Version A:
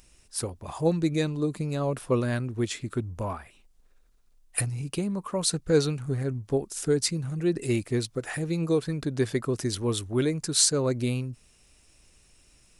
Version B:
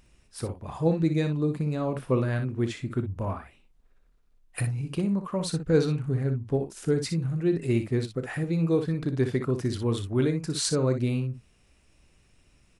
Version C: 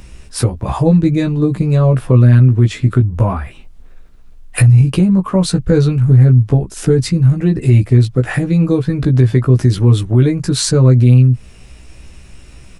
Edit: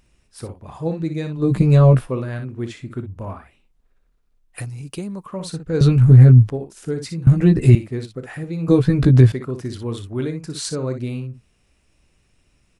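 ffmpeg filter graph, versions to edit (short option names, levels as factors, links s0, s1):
-filter_complex "[2:a]asplit=4[s0][s1][s2][s3];[1:a]asplit=6[s4][s5][s6][s7][s8][s9];[s4]atrim=end=1.52[s10];[s0]atrim=start=1.36:end=2.1[s11];[s5]atrim=start=1.94:end=4.612[s12];[0:a]atrim=start=4.608:end=5.262[s13];[s6]atrim=start=5.258:end=5.812[s14];[s1]atrim=start=5.808:end=6.502[s15];[s7]atrim=start=6.498:end=7.272[s16];[s2]atrim=start=7.268:end=7.752[s17];[s8]atrim=start=7.748:end=8.682[s18];[s3]atrim=start=8.678:end=9.322[s19];[s9]atrim=start=9.318[s20];[s10][s11]acrossfade=d=0.16:c1=tri:c2=tri[s21];[s21][s12]acrossfade=d=0.16:c1=tri:c2=tri[s22];[s22][s13]acrossfade=d=0.004:c1=hsin:c2=hsin[s23];[s23][s14]acrossfade=d=0.004:c1=hsin:c2=hsin[s24];[s24][s15]acrossfade=d=0.004:c1=hsin:c2=hsin[s25];[s25][s16]acrossfade=d=0.004:c1=hsin:c2=hsin[s26];[s26][s17]acrossfade=d=0.004:c1=hsin:c2=hsin[s27];[s27][s18]acrossfade=d=0.004:c1=hsin:c2=hsin[s28];[s28][s19]acrossfade=d=0.004:c1=hsin:c2=hsin[s29];[s29][s20]acrossfade=d=0.004:c1=hsin:c2=hsin"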